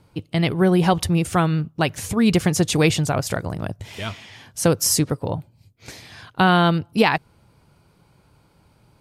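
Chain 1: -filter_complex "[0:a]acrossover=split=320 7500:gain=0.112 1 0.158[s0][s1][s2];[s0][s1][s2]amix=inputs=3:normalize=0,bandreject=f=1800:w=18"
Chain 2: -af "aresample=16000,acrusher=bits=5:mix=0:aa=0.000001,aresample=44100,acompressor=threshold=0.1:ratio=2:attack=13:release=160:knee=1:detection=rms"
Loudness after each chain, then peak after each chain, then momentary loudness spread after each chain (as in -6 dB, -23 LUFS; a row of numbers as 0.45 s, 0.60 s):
-24.0 LUFS, -24.0 LUFS; -1.5 dBFS, -6.0 dBFS; 16 LU, 11 LU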